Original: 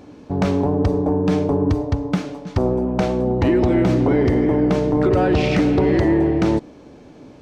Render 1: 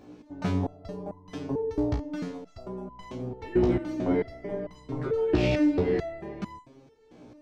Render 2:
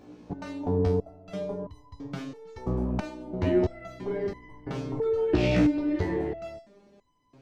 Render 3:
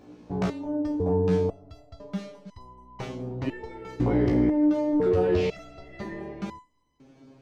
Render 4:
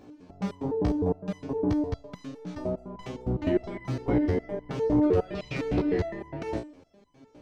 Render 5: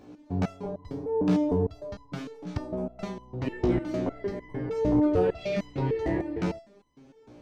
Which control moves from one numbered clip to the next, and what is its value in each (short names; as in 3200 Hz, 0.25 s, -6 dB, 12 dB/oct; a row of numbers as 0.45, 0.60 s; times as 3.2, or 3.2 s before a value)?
stepped resonator, rate: 4.5, 3, 2, 9.8, 6.6 Hz